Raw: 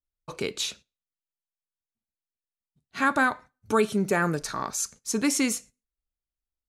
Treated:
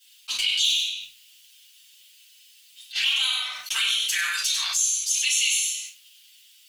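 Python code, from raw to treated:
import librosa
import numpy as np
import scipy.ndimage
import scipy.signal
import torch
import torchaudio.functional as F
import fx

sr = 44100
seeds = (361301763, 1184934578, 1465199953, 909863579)

p1 = fx.self_delay(x, sr, depth_ms=0.088, at=(0.63, 3.14))
p2 = fx.level_steps(p1, sr, step_db=21)
p3 = p1 + (p2 * 10.0 ** (-1.0 / 20.0))
p4 = 10.0 ** (-9.5 / 20.0) * np.tanh(p3 / 10.0 ** (-9.5 / 20.0))
p5 = fx.ladder_highpass(p4, sr, hz=2700.0, resonance_pct=60)
p6 = fx.env_flanger(p5, sr, rest_ms=7.1, full_db=-39.0)
p7 = p6 + fx.echo_single(p6, sr, ms=96, db=-9.0, dry=0)
p8 = fx.room_shoebox(p7, sr, seeds[0], volume_m3=310.0, walls='furnished', distance_m=7.3)
p9 = fx.env_flatten(p8, sr, amount_pct=70)
y = p9 * 10.0 ** (2.5 / 20.0)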